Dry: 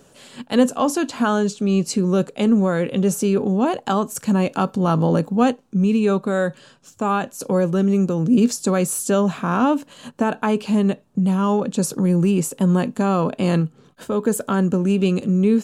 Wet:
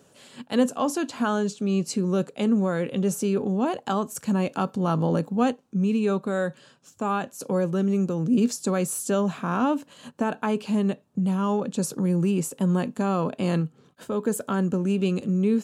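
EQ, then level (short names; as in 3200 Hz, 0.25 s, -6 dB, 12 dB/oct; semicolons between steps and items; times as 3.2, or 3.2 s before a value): HPF 63 Hz; -5.5 dB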